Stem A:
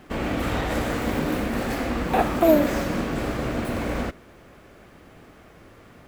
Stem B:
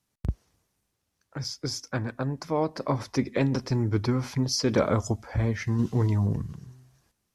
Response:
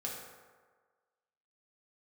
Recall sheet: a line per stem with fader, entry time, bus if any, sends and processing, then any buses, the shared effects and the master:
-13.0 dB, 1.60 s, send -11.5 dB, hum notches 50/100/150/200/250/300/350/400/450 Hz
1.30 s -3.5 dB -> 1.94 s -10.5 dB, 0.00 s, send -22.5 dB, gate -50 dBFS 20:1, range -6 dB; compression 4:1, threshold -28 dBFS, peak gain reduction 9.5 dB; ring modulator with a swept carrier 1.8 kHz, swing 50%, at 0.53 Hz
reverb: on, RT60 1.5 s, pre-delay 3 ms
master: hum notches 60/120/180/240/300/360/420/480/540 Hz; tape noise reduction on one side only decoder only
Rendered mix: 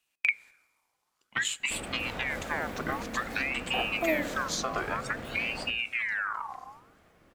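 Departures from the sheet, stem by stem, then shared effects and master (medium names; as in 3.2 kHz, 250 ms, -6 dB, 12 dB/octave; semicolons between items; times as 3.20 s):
stem B -3.5 dB -> +8.0 dB; master: missing tape noise reduction on one side only decoder only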